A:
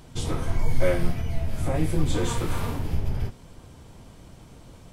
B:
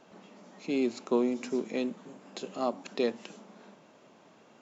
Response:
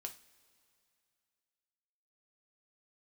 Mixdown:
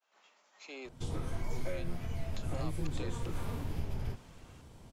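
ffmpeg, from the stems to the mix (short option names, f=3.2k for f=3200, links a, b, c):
-filter_complex "[0:a]adelay=850,volume=-12.5dB[a];[1:a]highpass=1.1k,volume=-4.5dB,asplit=3[b][c][d];[b]atrim=end=0.89,asetpts=PTS-STARTPTS,afade=t=out:st=0.886:d=0.004:c=hsin[e];[c]atrim=start=0.89:end=1.5,asetpts=PTS-STARTPTS,volume=0[f];[d]atrim=start=1.5,asetpts=PTS-STARTPTS,afade=t=in:d=0.004:c=hsin[g];[e][f][g]concat=n=3:v=0:a=1[h];[a][h]amix=inputs=2:normalize=0,acontrast=31,agate=range=-33dB:threshold=-54dB:ratio=3:detection=peak,acrossover=split=180|660|1500[i][j][k][l];[i]acompressor=threshold=-31dB:ratio=4[m];[j]acompressor=threshold=-42dB:ratio=4[n];[k]acompressor=threshold=-52dB:ratio=4[o];[l]acompressor=threshold=-51dB:ratio=4[p];[m][n][o][p]amix=inputs=4:normalize=0"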